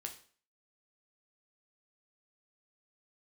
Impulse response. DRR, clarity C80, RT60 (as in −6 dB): 3.0 dB, 15.5 dB, 0.45 s